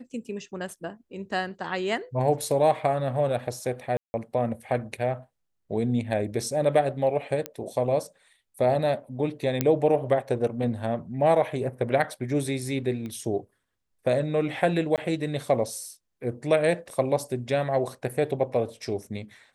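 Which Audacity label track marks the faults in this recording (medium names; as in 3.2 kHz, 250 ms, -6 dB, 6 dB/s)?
3.970000	4.140000	dropout 170 ms
7.460000	7.460000	pop -14 dBFS
9.610000	9.610000	pop -8 dBFS
13.060000	13.060000	pop -25 dBFS
14.960000	14.980000	dropout 18 ms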